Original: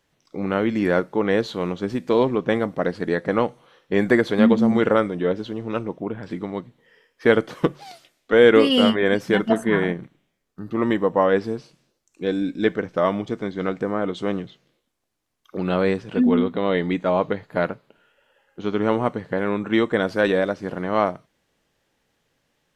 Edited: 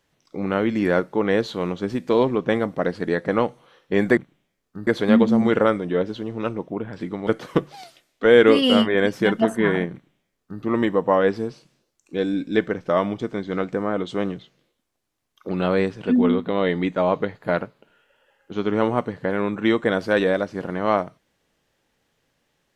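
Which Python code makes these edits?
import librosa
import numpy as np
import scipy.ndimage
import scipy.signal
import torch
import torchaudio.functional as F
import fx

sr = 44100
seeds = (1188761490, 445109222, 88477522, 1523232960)

y = fx.edit(x, sr, fx.cut(start_s=6.57, length_s=0.78),
    fx.duplicate(start_s=10.0, length_s=0.7, to_s=4.17), tone=tone)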